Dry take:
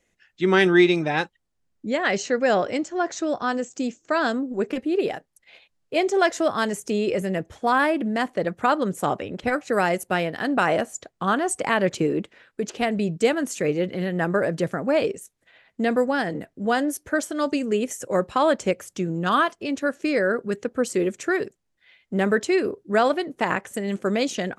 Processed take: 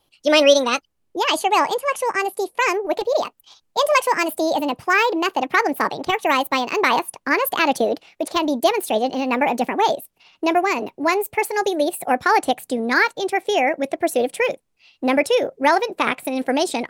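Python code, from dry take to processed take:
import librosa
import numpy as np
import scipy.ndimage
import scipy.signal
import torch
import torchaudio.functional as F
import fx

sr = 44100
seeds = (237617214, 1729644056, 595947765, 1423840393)

y = fx.speed_glide(x, sr, from_pct=161, to_pct=130)
y = y * 10.0 ** (3.5 / 20.0)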